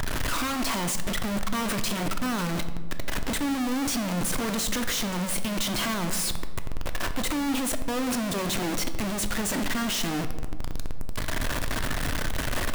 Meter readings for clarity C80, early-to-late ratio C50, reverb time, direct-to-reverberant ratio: 12.5 dB, 10.5 dB, 1.5 s, 8.0 dB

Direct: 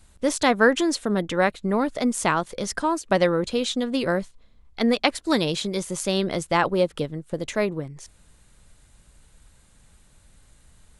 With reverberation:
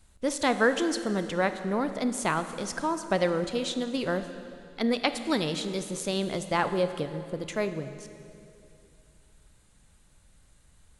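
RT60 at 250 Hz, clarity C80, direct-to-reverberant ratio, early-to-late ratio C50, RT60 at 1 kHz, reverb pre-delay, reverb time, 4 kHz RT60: 3.2 s, 11.0 dB, 9.5 dB, 10.5 dB, 2.5 s, 26 ms, 2.7 s, 2.4 s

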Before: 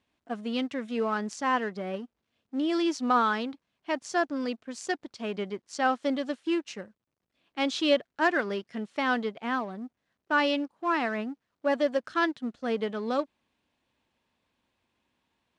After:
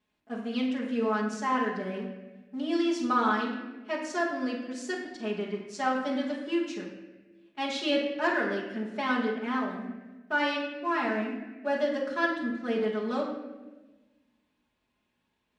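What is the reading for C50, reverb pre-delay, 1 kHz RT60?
4.0 dB, 5 ms, 1.1 s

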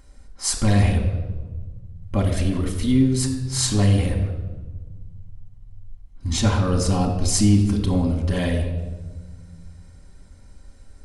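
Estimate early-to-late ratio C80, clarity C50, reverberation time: 9.0 dB, 7.0 dB, 1.4 s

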